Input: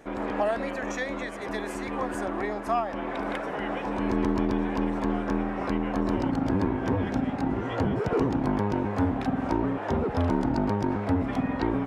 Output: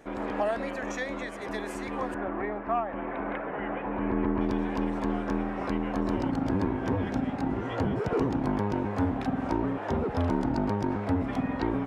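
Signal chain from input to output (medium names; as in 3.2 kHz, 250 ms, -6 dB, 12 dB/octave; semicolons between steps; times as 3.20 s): 2.14–4.41 s: low-pass 2.5 kHz 24 dB/octave; trim -2 dB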